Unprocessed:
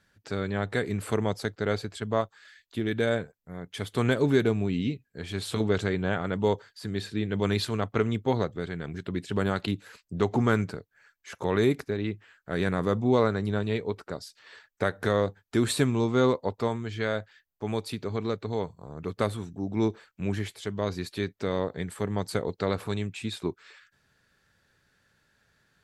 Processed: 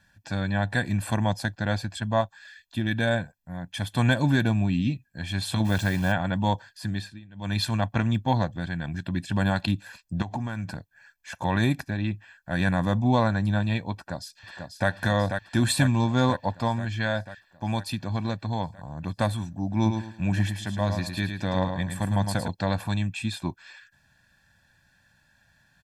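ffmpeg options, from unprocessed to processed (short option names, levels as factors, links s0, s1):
-filter_complex "[0:a]asplit=3[s0][s1][s2];[s0]afade=t=out:st=5.64:d=0.02[s3];[s1]acrusher=bits=8:dc=4:mix=0:aa=0.000001,afade=t=in:st=5.64:d=0.02,afade=t=out:st=6.11:d=0.02[s4];[s2]afade=t=in:st=6.11:d=0.02[s5];[s3][s4][s5]amix=inputs=3:normalize=0,asettb=1/sr,asplit=3[s6][s7][s8];[s6]atrim=end=10.224[s9];[s7]atrim=start=10.22:end=10.75,asetpts=PTS-STARTPTS,afade=t=in:d=0.004:c=qsin,afade=t=out:st=0.526:d=0.004:c=qsin,acompressor=threshold=0.0282:ratio=5:attack=3.2:release=140:knee=1:detection=peak[s10];[s8]atrim=start=10.746[s11];[s9][s10]acrossfade=d=0.004:c1=hsin:c2=qsin[s12];[s12][s11]acrossfade=d=0.004:c1=qsin:c2=hsin,asplit=2[s13][s14];[s14]afade=t=in:st=13.94:d=0.01,afade=t=out:st=14.89:d=0.01,aecho=0:1:490|980|1470|1960|2450|2940|3430|3920|4410|4900|5390|5880:0.530884|0.371619|0.260133|0.182093|0.127465|0.0892257|0.062458|0.0437206|0.0306044|0.0214231|0.0149962|0.0104973[s15];[s13][s15]amix=inputs=2:normalize=0,asettb=1/sr,asplit=3[s16][s17][s18];[s16]atrim=end=19.754[s19];[s17]atrim=start=19.75:end=22.48,asetpts=PTS-STARTPTS,afade=t=in:d=0.004:c=qsin,afade=t=out:st=2.726:d=0.004:c=qsin,aecho=1:1:108|216|324|432:0.473|0.137|0.0398|0.0115,atrim=end_sample=120393[s20];[s18]atrim=start=22.476[s21];[s19][s20]acrossfade=d=0.004:c1=hsin:c2=qsin[s22];[s22][s21]acrossfade=d=0.004:c1=qsin:c2=hsin,asplit=3[s23][s24][s25];[s23]atrim=end=7.2,asetpts=PTS-STARTPTS,afade=t=out:st=6.88:d=0.32:silence=0.0841395[s26];[s24]atrim=start=7.2:end=7.35,asetpts=PTS-STARTPTS,volume=0.0841[s27];[s25]atrim=start=7.35,asetpts=PTS-STARTPTS,afade=t=in:d=0.32:silence=0.0841395[s28];[s26][s27][s28]concat=n=3:v=0:a=1,aecho=1:1:1.2:0.95,volume=1.12"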